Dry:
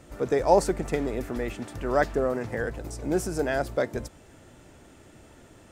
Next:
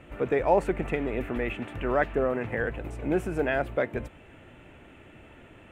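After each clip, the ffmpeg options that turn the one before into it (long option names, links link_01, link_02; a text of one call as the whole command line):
ffmpeg -i in.wav -filter_complex "[0:a]highshelf=frequency=3700:width_type=q:width=3:gain=-11.5,asplit=2[link_01][link_02];[link_02]alimiter=limit=-17dB:level=0:latency=1:release=272,volume=2dB[link_03];[link_01][link_03]amix=inputs=2:normalize=0,volume=-6.5dB" out.wav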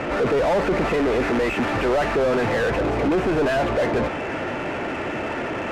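ffmpeg -i in.wav -filter_complex "[0:a]asoftclip=type=tanh:threshold=-25.5dB,asplit=2[link_01][link_02];[link_02]highpass=frequency=720:poles=1,volume=35dB,asoftclip=type=tanh:threshold=-18.5dB[link_03];[link_01][link_03]amix=inputs=2:normalize=0,lowpass=frequency=1100:poles=1,volume=-6dB,adynamicsmooth=sensitivity=8:basefreq=2200,volume=6dB" out.wav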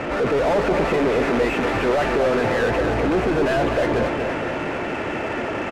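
ffmpeg -i in.wav -af "aecho=1:1:239|478|717|956|1195|1434|1673:0.447|0.259|0.15|0.0872|0.0505|0.0293|0.017" out.wav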